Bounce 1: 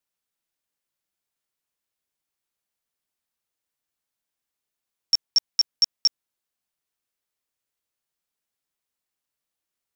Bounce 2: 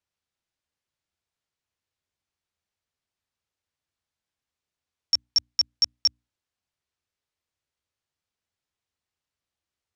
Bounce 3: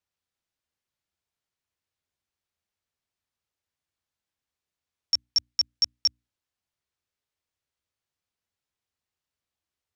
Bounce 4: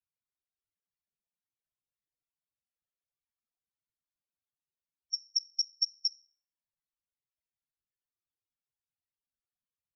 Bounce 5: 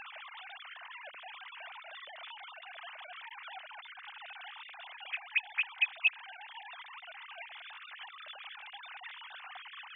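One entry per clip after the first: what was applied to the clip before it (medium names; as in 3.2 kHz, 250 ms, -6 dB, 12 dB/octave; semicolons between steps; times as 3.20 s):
low-pass 6.4 kHz 12 dB/octave; peaking EQ 80 Hz +13 dB 1.2 oct; hum notches 60/120/180/240/300 Hz
dynamic bell 780 Hz, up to -5 dB, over -54 dBFS, Q 1.3; trim -1.5 dB
feedback comb 170 Hz, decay 0.44 s, harmonics all, mix 60%; whisper effect; loudest bins only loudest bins 16
formants replaced by sine waves; trim +2 dB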